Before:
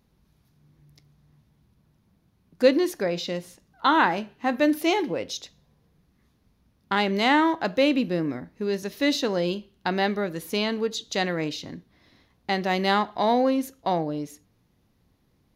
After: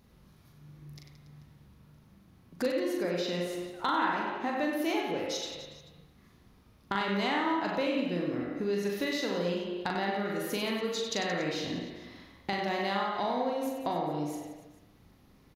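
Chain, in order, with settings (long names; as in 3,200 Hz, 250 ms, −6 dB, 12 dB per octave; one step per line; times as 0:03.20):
on a send at −1.5 dB: high-pass filter 260 Hz 24 dB per octave + convolution reverb RT60 0.75 s, pre-delay 39 ms
on the sum: downward compressor 3 to 1, threshold −38 dBFS, peak gain reduction 19 dB
hard clipping −23 dBFS, distortion −44 dB
reverse bouncing-ball delay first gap 40 ms, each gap 1.4×, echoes 5
level +3.5 dB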